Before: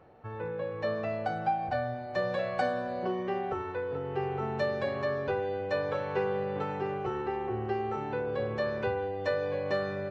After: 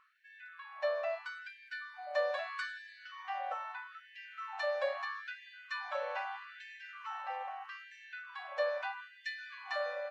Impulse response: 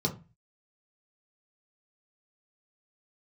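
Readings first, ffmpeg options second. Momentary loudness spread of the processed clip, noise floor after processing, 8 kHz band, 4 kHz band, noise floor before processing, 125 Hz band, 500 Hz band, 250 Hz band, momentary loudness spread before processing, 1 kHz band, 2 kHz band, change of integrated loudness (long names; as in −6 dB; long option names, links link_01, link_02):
14 LU, −58 dBFS, can't be measured, −1.0 dB, −39 dBFS, below −40 dB, −8.5 dB, below −40 dB, 3 LU, −7.5 dB, −1.0 dB, −7.0 dB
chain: -af "bandreject=frequency=850:width=12,afftfilt=real='re*gte(b*sr/1024,500*pow(1600/500,0.5+0.5*sin(2*PI*0.78*pts/sr)))':imag='im*gte(b*sr/1024,500*pow(1600/500,0.5+0.5*sin(2*PI*0.78*pts/sr)))':win_size=1024:overlap=0.75,volume=-1dB"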